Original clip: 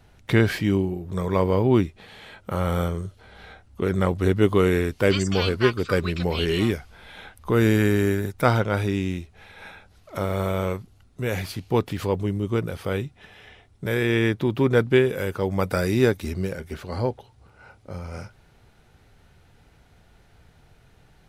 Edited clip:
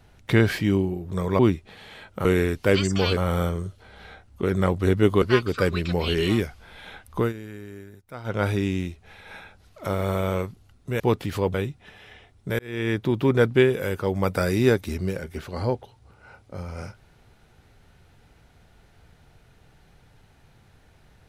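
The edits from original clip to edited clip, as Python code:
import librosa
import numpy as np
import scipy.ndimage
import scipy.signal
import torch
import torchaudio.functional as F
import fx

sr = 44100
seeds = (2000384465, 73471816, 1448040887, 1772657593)

y = fx.edit(x, sr, fx.cut(start_s=1.39, length_s=0.31),
    fx.move(start_s=4.61, length_s=0.92, to_s=2.56),
    fx.fade_down_up(start_s=7.51, length_s=1.17, db=-19.5, fade_s=0.13),
    fx.cut(start_s=11.31, length_s=0.36),
    fx.cut(start_s=12.21, length_s=0.69),
    fx.fade_in_span(start_s=13.95, length_s=0.45), tone=tone)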